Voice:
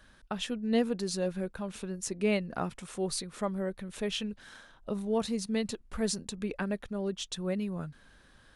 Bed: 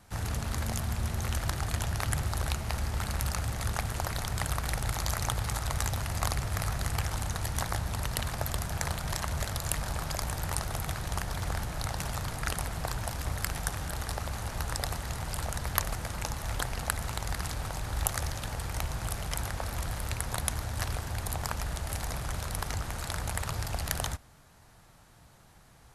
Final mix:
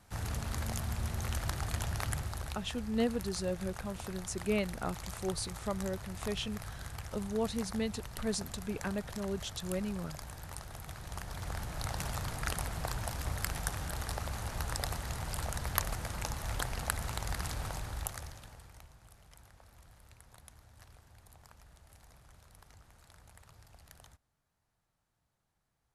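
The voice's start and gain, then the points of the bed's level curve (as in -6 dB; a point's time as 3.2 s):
2.25 s, -3.5 dB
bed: 2.02 s -4 dB
2.72 s -12.5 dB
10.74 s -12.5 dB
11.94 s -3 dB
17.72 s -3 dB
18.98 s -24.5 dB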